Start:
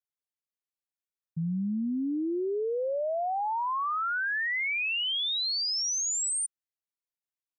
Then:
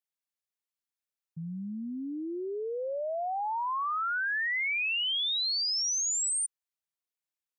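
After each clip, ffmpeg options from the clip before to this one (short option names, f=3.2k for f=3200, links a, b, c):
-af "lowshelf=f=470:g=-8.5"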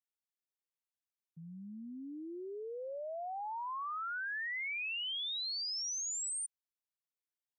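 -af "highpass=170,volume=-8.5dB"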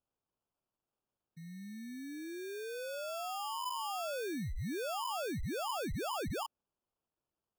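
-af "acrusher=samples=22:mix=1:aa=0.000001,volume=1dB"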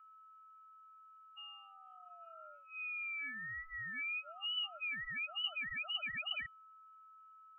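-af "aeval=exprs='val(0)+0.00141*sin(2*PI*1700*n/s)':c=same,lowpass=f=2.6k:t=q:w=0.5098,lowpass=f=2.6k:t=q:w=0.6013,lowpass=f=2.6k:t=q:w=0.9,lowpass=f=2.6k:t=q:w=2.563,afreqshift=-3000,afftfilt=real='re*eq(mod(floor(b*sr/1024/280),2),0)':imag='im*eq(mod(floor(b*sr/1024/280),2),0)':win_size=1024:overlap=0.75"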